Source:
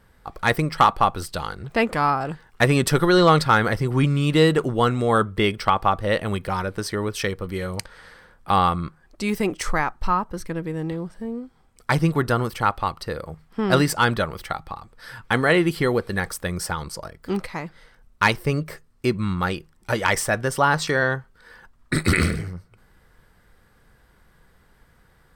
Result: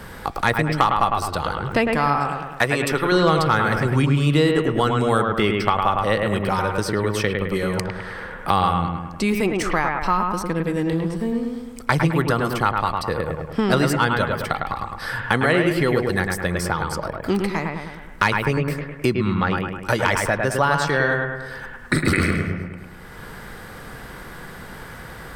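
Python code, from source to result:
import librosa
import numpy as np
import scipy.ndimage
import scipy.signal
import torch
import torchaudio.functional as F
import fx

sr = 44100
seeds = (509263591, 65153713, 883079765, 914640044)

y = fx.low_shelf(x, sr, hz=360.0, db=-11.5, at=(2.18, 3.12))
y = fx.lowpass(y, sr, hz=fx.line((19.15, 5300.0), (19.56, 2400.0)), slope=12, at=(19.15, 19.56), fade=0.02)
y = fx.echo_bbd(y, sr, ms=104, stages=2048, feedback_pct=43, wet_db=-4)
y = fx.band_squash(y, sr, depth_pct=70)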